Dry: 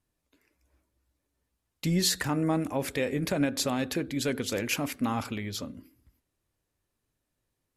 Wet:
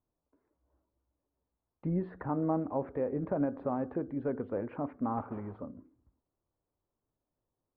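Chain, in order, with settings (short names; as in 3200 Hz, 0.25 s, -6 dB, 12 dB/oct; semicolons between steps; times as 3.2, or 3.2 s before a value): 5.17–5.58 block floating point 3-bit; inverse Chebyshev low-pass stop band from 6100 Hz, stop band 80 dB; low shelf 330 Hz -7 dB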